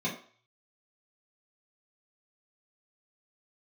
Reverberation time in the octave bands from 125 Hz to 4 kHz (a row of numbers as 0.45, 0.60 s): 0.60, 0.35, 0.45, 0.50, 0.50, 0.45 s